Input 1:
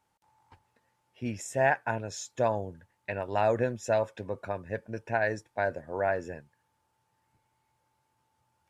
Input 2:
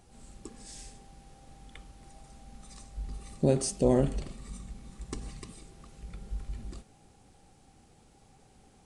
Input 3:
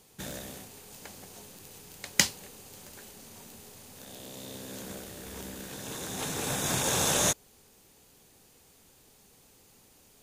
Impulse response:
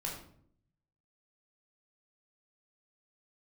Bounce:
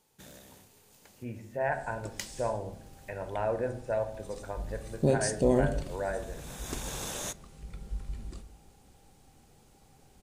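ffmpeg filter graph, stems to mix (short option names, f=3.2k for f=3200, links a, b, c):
-filter_complex "[0:a]lowpass=2k,volume=-8.5dB,asplit=3[a][b][c];[b]volume=-3dB[d];[1:a]adelay=1600,volume=-2dB,asplit=2[e][f];[f]volume=-11.5dB[g];[2:a]volume=-12dB,asplit=2[h][i];[i]volume=-19.5dB[j];[c]apad=whole_len=450962[k];[h][k]sidechaincompress=threshold=-42dB:ratio=8:attack=8:release=604[l];[3:a]atrim=start_sample=2205[m];[d][g][j]amix=inputs=3:normalize=0[n];[n][m]afir=irnorm=-1:irlink=0[o];[a][e][l][o]amix=inputs=4:normalize=0"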